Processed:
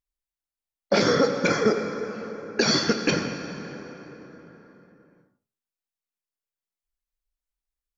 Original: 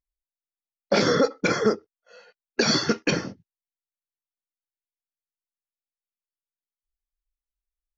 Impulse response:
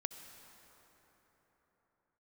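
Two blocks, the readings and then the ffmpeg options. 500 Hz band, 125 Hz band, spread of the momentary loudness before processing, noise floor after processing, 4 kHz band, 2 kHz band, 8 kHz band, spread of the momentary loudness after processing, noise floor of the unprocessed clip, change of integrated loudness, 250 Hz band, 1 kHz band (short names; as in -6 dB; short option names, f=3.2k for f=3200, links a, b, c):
+1.0 dB, +1.0 dB, 11 LU, under -85 dBFS, +0.5 dB, +0.5 dB, n/a, 17 LU, under -85 dBFS, -0.5 dB, +1.0 dB, +1.0 dB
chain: -filter_complex "[0:a]flanger=delay=9.8:depth=1.5:regen=-88:speed=1.9:shape=sinusoidal[a];[1:a]atrim=start_sample=2205[b];[a][b]afir=irnorm=-1:irlink=0,volume=6.5dB"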